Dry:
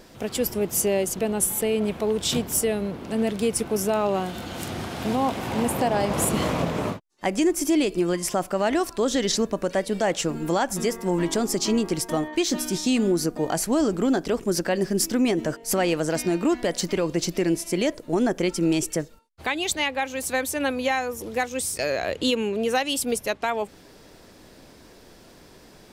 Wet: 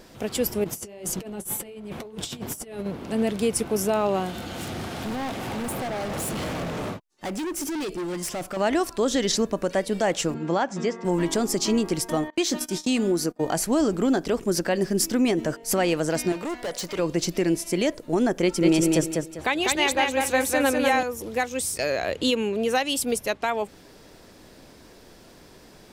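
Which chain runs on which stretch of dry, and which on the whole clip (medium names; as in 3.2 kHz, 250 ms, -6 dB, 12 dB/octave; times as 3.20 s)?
0.64–2.86 s: compressor with a negative ratio -29 dBFS, ratio -0.5 + flange 2 Hz, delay 5.4 ms, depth 4 ms, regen -44%
4.36–8.57 s: overload inside the chain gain 27.5 dB + band-stop 1 kHz, Q 15
10.34–11.05 s: Chebyshev band-pass 130–7500 Hz, order 3 + distance through air 120 m
12.30–13.41 s: gate -30 dBFS, range -24 dB + bass shelf 140 Hz -7.5 dB
16.32–16.99 s: resonant low shelf 390 Hz -6 dB, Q 1.5 + hard clipper -27 dBFS
18.42–21.03 s: peaking EQ 590 Hz +3 dB 2.9 oct + feedback delay 198 ms, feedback 29%, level -3 dB
whole clip: none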